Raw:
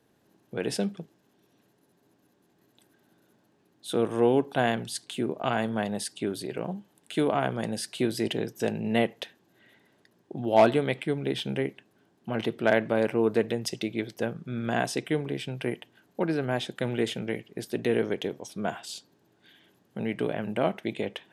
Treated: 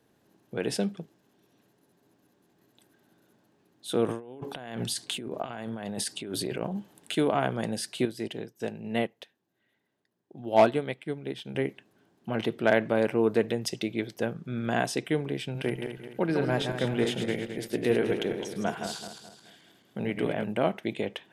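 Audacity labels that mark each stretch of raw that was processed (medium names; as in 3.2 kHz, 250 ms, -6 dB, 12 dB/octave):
4.080000	7.150000	compressor with a negative ratio -36 dBFS
8.050000	11.550000	upward expansion, over -45 dBFS
15.440000	20.440000	backward echo that repeats 107 ms, feedback 62%, level -6 dB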